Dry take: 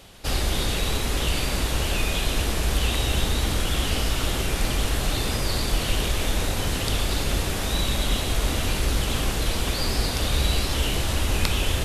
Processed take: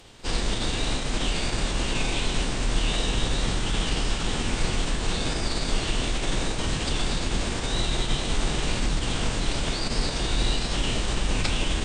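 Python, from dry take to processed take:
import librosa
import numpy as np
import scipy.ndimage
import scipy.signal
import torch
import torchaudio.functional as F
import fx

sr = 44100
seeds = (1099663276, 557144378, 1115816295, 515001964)

y = fx.rev_fdn(x, sr, rt60_s=0.37, lf_ratio=0.85, hf_ratio=0.5, size_ms=31.0, drr_db=18.0)
y = fx.pitch_keep_formants(y, sr, semitones=-8.5)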